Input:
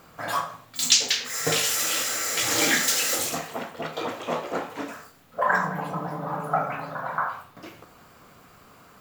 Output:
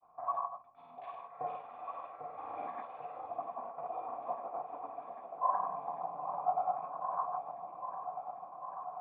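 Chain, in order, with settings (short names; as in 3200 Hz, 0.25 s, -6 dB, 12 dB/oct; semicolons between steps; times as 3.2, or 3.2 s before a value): vocal tract filter a; grains, pitch spread up and down by 0 st; repeats that get brighter 0.797 s, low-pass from 750 Hz, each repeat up 1 oct, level -6 dB; gain +1.5 dB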